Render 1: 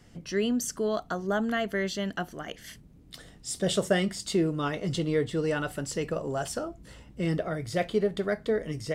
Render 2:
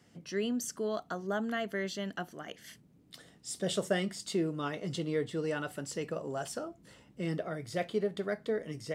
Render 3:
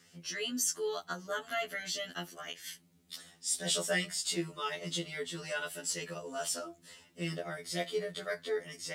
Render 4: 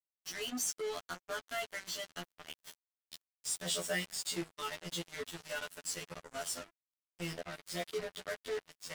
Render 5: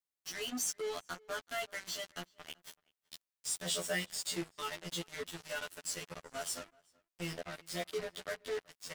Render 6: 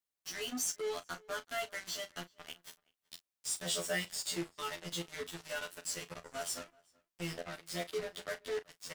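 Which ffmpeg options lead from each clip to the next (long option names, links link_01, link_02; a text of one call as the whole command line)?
ffmpeg -i in.wav -af "highpass=130,volume=-5.5dB" out.wav
ffmpeg -i in.wav -af "tiltshelf=frequency=1400:gain=-7.5,afftfilt=real='re*2*eq(mod(b,4),0)':imag='im*2*eq(mod(b,4),0)':win_size=2048:overlap=0.75,volume=3.5dB" out.wav
ffmpeg -i in.wav -af "acrusher=bits=5:mix=0:aa=0.5,volume=-4dB" out.wav
ffmpeg -i in.wav -filter_complex "[0:a]asplit=2[link_01][link_02];[link_02]adelay=379,volume=-26dB,highshelf=frequency=4000:gain=-8.53[link_03];[link_01][link_03]amix=inputs=2:normalize=0" out.wav
ffmpeg -i in.wav -filter_complex "[0:a]asplit=2[link_01][link_02];[link_02]adelay=35,volume=-13.5dB[link_03];[link_01][link_03]amix=inputs=2:normalize=0" out.wav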